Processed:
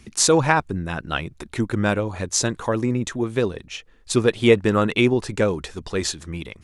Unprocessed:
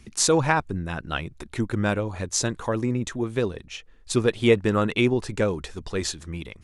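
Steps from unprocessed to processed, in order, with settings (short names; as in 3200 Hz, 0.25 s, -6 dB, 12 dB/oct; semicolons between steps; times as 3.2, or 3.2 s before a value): low shelf 61 Hz -6.5 dB; gain +3.5 dB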